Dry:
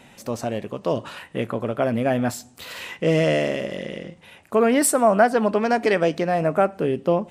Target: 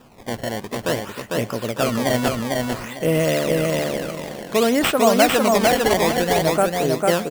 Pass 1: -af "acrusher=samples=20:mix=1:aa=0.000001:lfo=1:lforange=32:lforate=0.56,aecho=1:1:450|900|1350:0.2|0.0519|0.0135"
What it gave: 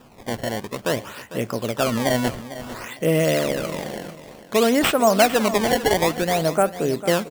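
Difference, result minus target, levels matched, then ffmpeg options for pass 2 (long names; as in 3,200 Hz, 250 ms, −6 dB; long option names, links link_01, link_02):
echo-to-direct −11.5 dB
-af "acrusher=samples=20:mix=1:aa=0.000001:lfo=1:lforange=32:lforate=0.56,aecho=1:1:450|900|1350|1800:0.75|0.195|0.0507|0.0132"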